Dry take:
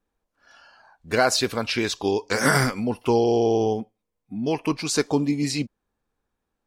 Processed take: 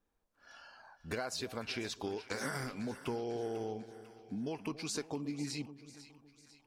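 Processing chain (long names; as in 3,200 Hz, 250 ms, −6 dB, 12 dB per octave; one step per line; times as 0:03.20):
downward compressor 5 to 1, threshold −34 dBFS, peak gain reduction 17.5 dB
on a send: echo with a time of its own for lows and highs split 890 Hz, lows 279 ms, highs 497 ms, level −14 dB
on the sum: level −3.5 dB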